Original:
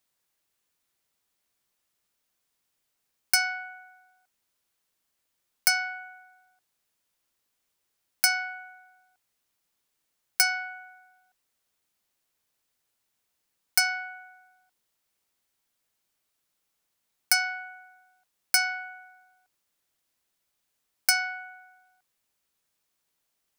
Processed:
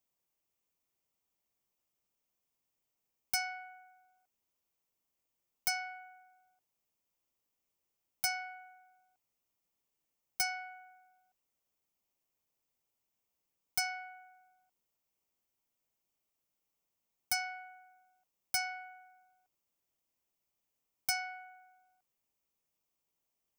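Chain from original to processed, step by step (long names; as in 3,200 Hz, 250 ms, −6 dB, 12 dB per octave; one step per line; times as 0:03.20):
graphic EQ with 15 bands 1,600 Hz −10 dB, 4,000 Hz −9 dB, 10,000 Hz −7 dB
gain into a clipping stage and back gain 20 dB
level −4.5 dB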